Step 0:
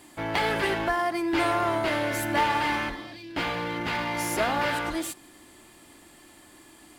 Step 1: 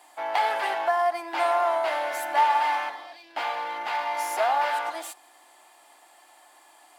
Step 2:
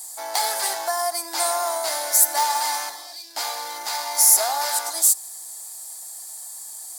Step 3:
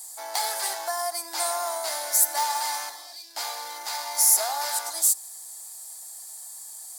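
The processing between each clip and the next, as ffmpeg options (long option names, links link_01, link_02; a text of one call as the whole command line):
ffmpeg -i in.wav -af "highpass=frequency=760:width_type=q:width=3.6,volume=-4dB" out.wav
ffmpeg -i in.wav -af "aexciter=amount=11.3:drive=8.5:freq=4400,volume=-2dB" out.wav
ffmpeg -i in.wav -af "highpass=frequency=350:poles=1,volume=-4dB" out.wav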